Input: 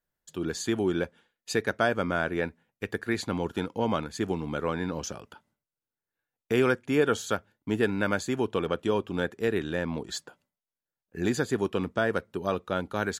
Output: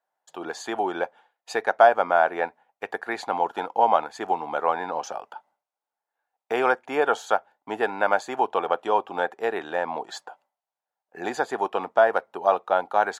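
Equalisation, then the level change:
high-pass with resonance 780 Hz, resonance Q 4.9
spectral tilt −3 dB per octave
+3.5 dB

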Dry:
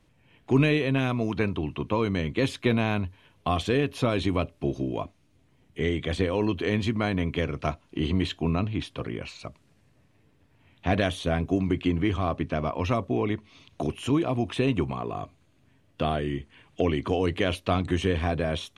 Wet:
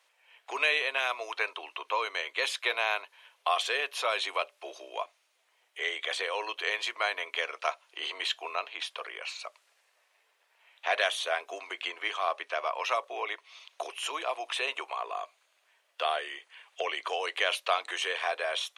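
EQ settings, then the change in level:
Bessel high-pass filter 930 Hz, order 8
+4.0 dB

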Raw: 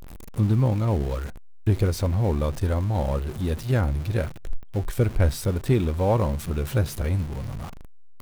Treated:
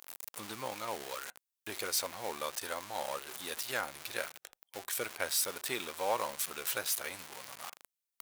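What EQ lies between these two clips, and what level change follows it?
Bessel high-pass filter 1,200 Hz, order 2
high-shelf EQ 4,800 Hz +7 dB
0.0 dB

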